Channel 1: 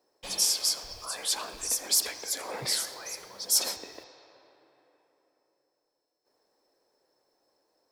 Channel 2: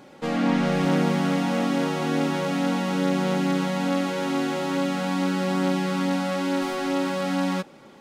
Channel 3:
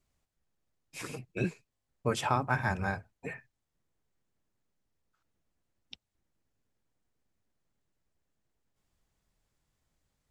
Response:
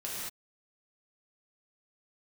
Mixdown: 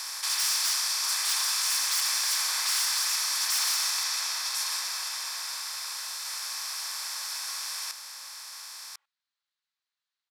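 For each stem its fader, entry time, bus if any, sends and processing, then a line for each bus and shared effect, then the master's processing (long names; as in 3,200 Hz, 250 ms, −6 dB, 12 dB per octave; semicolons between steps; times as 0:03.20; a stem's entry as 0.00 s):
−2.5 dB, 0.00 s, send −7 dB, echo send −4 dB, compressor on every frequency bin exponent 0.2
−13.0 dB, 0.00 s, no send, echo send −5 dB, downward compressor, threshold −28 dBFS, peak gain reduction 10.5 dB
−15.0 dB, 1.70 s, no send, no echo send, parametric band 4,100 Hz +13.5 dB 0.77 octaves; every bin compressed towards the loudest bin 2 to 1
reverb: on, pre-delay 3 ms
echo: single-tap delay 1,046 ms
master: wave folding −14 dBFS; high-pass filter 1,100 Hz 24 dB per octave; high-shelf EQ 3,700 Hz −9 dB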